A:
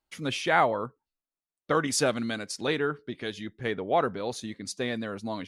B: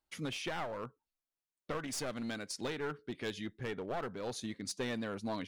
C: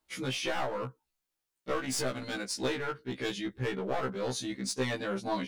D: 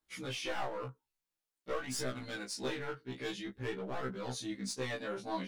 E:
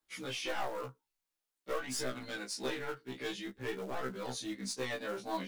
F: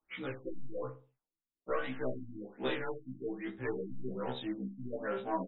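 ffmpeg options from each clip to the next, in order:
ffmpeg -i in.wav -af "aeval=exprs='clip(val(0),-1,0.0376)':channel_layout=same,alimiter=limit=-23.5dB:level=0:latency=1:release=468,volume=-3.5dB" out.wav
ffmpeg -i in.wav -filter_complex "[0:a]asplit=2[link_01][link_02];[link_02]asoftclip=type=tanh:threshold=-38dB,volume=-8dB[link_03];[link_01][link_03]amix=inputs=2:normalize=0,afftfilt=real='re*1.73*eq(mod(b,3),0)':imag='im*1.73*eq(mod(b,3),0)':win_size=2048:overlap=0.75,volume=6.5dB" out.wav
ffmpeg -i in.wav -af "flanger=delay=16:depth=6.8:speed=0.49,volume=-2.5dB" out.wav
ffmpeg -i in.wav -filter_complex "[0:a]equalizer=frequency=85:width_type=o:width=1.9:gain=-8,acrossover=split=210|940[link_01][link_02][link_03];[link_02]acrusher=bits=4:mode=log:mix=0:aa=0.000001[link_04];[link_01][link_04][link_03]amix=inputs=3:normalize=0,volume=1dB" out.wav
ffmpeg -i in.wav -filter_complex "[0:a]asplit=2[link_01][link_02];[link_02]adelay=61,lowpass=frequency=890:poles=1,volume=-9dB,asplit=2[link_03][link_04];[link_04]adelay=61,lowpass=frequency=890:poles=1,volume=0.38,asplit=2[link_05][link_06];[link_06]adelay=61,lowpass=frequency=890:poles=1,volume=0.38,asplit=2[link_07][link_08];[link_08]adelay=61,lowpass=frequency=890:poles=1,volume=0.38[link_09];[link_01][link_03][link_05][link_07][link_09]amix=inputs=5:normalize=0,afftfilt=real='re*lt(b*sr/1024,290*pow(4000/290,0.5+0.5*sin(2*PI*1.2*pts/sr)))':imag='im*lt(b*sr/1024,290*pow(4000/290,0.5+0.5*sin(2*PI*1.2*pts/sr)))':win_size=1024:overlap=0.75,volume=2.5dB" out.wav

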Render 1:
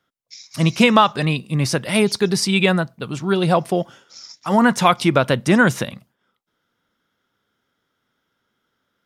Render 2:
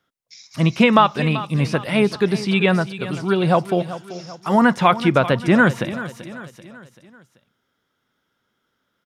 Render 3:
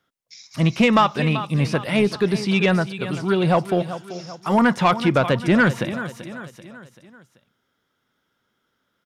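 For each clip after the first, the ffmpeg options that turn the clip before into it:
ffmpeg -i in.wav -filter_complex "[0:a]aecho=1:1:386|772|1158|1544:0.188|0.0885|0.0416|0.0196,acrossover=split=3500[link_01][link_02];[link_02]acompressor=threshold=-41dB:ratio=4:attack=1:release=60[link_03];[link_01][link_03]amix=inputs=2:normalize=0" out.wav
ffmpeg -i in.wav -af "asoftclip=type=tanh:threshold=-8.5dB" out.wav

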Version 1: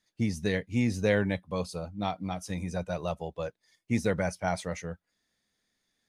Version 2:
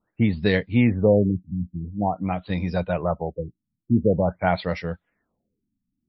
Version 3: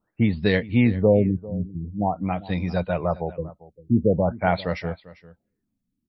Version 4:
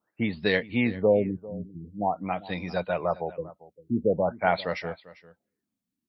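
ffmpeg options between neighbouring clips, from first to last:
ffmpeg -i in.wav -af "afftfilt=real='re*lt(b*sr/1024,290*pow(5700/290,0.5+0.5*sin(2*PI*0.47*pts/sr)))':imag='im*lt(b*sr/1024,290*pow(5700/290,0.5+0.5*sin(2*PI*0.47*pts/sr)))':win_size=1024:overlap=0.75,volume=8.5dB" out.wav
ffmpeg -i in.wav -af "aecho=1:1:397:0.112" out.wav
ffmpeg -i in.wav -af "highpass=frequency=450:poles=1" out.wav

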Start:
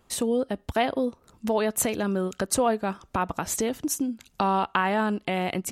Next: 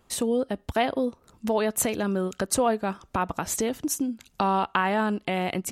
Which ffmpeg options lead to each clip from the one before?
ffmpeg -i in.wav -af anull out.wav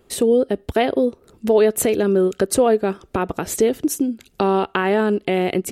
ffmpeg -i in.wav -af "equalizer=frequency=400:width_type=o:width=0.67:gain=10,equalizer=frequency=1000:width_type=o:width=0.67:gain=-6,equalizer=frequency=6300:width_type=o:width=0.67:gain=-4,volume=4.5dB" out.wav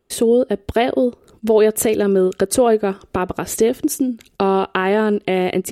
ffmpeg -i in.wav -af "agate=range=-14dB:threshold=-50dB:ratio=16:detection=peak,volume=1.5dB" out.wav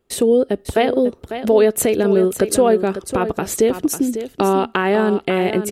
ffmpeg -i in.wav -af "aecho=1:1:548:0.299" out.wav

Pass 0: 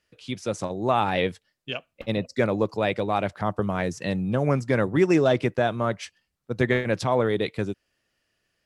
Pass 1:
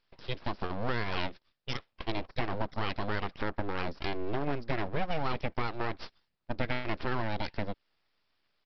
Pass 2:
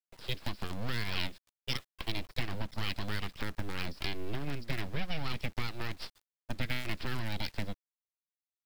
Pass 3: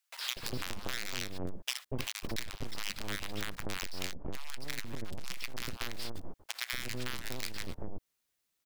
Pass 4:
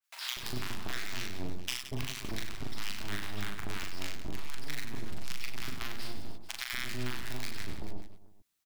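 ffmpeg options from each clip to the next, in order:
ffmpeg -i in.wav -af "acompressor=threshold=-28dB:ratio=3,aresample=11025,aeval=exprs='abs(val(0))':channel_layout=same,aresample=44100" out.wav
ffmpeg -i in.wav -filter_complex "[0:a]highshelf=frequency=3600:gain=7.5,acrossover=split=250|1800[link_01][link_02][link_03];[link_02]acompressor=threshold=-43dB:ratio=16[link_04];[link_01][link_04][link_03]amix=inputs=3:normalize=0,acrusher=bits=7:dc=4:mix=0:aa=0.000001" out.wav
ffmpeg -i in.wav -filter_complex "[0:a]aeval=exprs='clip(val(0),-1,0.0075)':channel_layout=same,acrossover=split=840[link_01][link_02];[link_01]adelay=240[link_03];[link_03][link_02]amix=inputs=2:normalize=0,acompressor=threshold=-47dB:ratio=6,volume=15dB" out.wav
ffmpeg -i in.wav -filter_complex "[0:a]equalizer=frequency=510:width=6.7:gain=-14,asplit=2[link_01][link_02];[link_02]aecho=0:1:40|96|174.4|284.2|437.8:0.631|0.398|0.251|0.158|0.1[link_03];[link_01][link_03]amix=inputs=2:normalize=0,adynamicequalizer=threshold=0.00447:dfrequency=2700:dqfactor=0.7:tfrequency=2700:tqfactor=0.7:attack=5:release=100:ratio=0.375:range=2:mode=cutabove:tftype=highshelf,volume=-1dB" out.wav

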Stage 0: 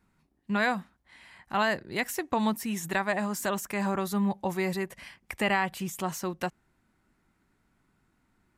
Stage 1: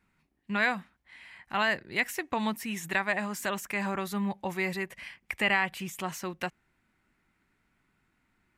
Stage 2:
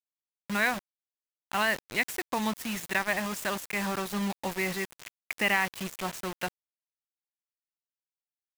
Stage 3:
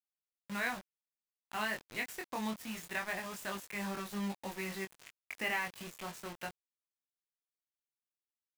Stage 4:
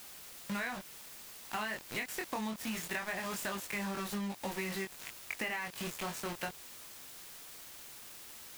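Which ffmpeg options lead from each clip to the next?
ffmpeg -i in.wav -af "equalizer=frequency=2300:width=1.1:gain=8.5,volume=-4dB" out.wav
ffmpeg -i in.wav -af "acrusher=bits=5:mix=0:aa=0.000001" out.wav
ffmpeg -i in.wav -af "flanger=delay=20:depth=3.6:speed=0.24,volume=-6dB" out.wav
ffmpeg -i in.wav -af "aeval=exprs='val(0)+0.5*0.00631*sgn(val(0))':channel_layout=same,acompressor=threshold=-39dB:ratio=10,volume=5dB" out.wav

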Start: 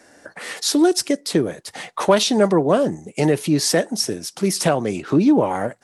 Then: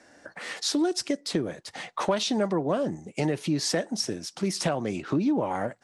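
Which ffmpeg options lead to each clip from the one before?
ffmpeg -i in.wav -af "lowpass=7100,equalizer=frequency=430:width=4.4:gain=-3.5,acompressor=threshold=-19dB:ratio=2.5,volume=-4.5dB" out.wav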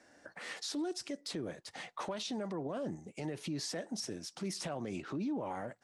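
ffmpeg -i in.wav -af "alimiter=limit=-23dB:level=0:latency=1:release=35,volume=-7.5dB" out.wav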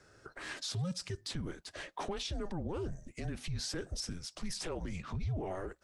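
ffmpeg -i in.wav -af "afreqshift=-180,volume=1dB" out.wav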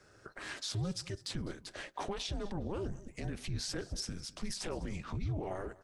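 ffmpeg -i in.wav -af "tremolo=f=210:d=0.571,aecho=1:1:204|408:0.1|0.024,volume=2.5dB" out.wav

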